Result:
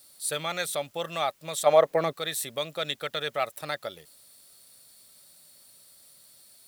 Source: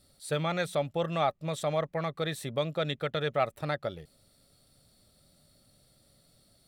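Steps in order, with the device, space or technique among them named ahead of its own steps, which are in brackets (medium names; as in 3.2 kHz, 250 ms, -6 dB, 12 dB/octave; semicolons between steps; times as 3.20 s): turntable without a phono preamp (RIAA curve recording; white noise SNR 30 dB); 1.65–2.12 s: peaking EQ 810 Hz -> 270 Hz +14 dB 2.5 oct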